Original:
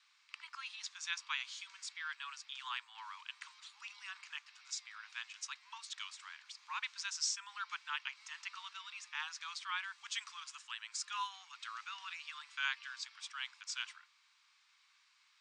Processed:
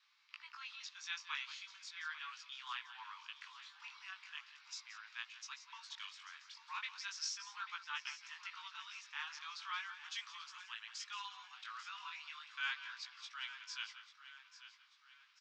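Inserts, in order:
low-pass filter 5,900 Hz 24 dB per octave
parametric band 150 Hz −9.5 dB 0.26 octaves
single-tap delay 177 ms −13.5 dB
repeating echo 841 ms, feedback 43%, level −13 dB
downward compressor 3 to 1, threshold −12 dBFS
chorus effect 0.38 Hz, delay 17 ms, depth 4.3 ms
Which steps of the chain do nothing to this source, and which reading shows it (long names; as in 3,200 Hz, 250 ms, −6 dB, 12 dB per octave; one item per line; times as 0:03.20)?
parametric band 150 Hz: nothing at its input below 720 Hz
downward compressor, threshold −12 dBFS: peak of its input −23.0 dBFS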